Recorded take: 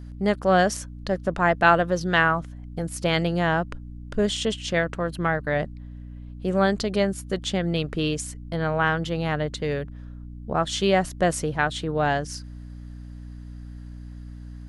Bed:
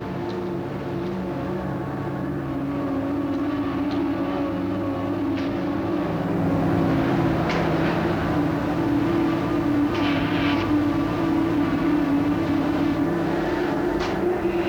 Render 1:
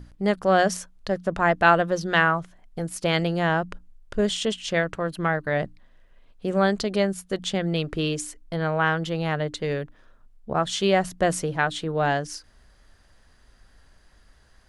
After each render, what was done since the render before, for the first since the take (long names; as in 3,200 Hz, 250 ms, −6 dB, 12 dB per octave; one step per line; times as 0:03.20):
mains-hum notches 60/120/180/240/300 Hz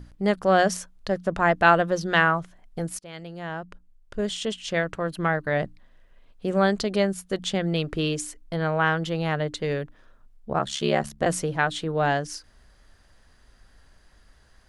0:02.99–0:05.20: fade in, from −22.5 dB
0:10.58–0:11.26: ring modulation 35 Hz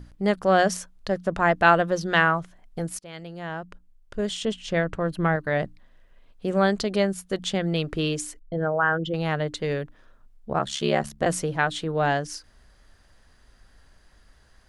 0:04.42–0:05.36: spectral tilt −1.5 dB per octave
0:08.39–0:09.14: spectral envelope exaggerated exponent 2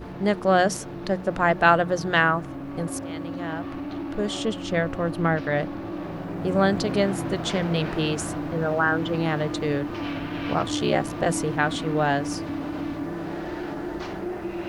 mix in bed −8.5 dB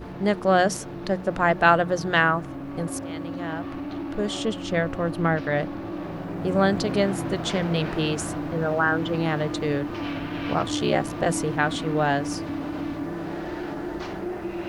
no processing that can be heard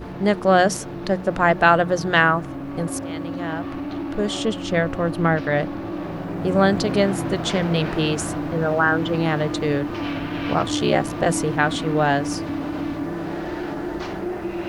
level +3.5 dB
brickwall limiter −3 dBFS, peak gain reduction 2 dB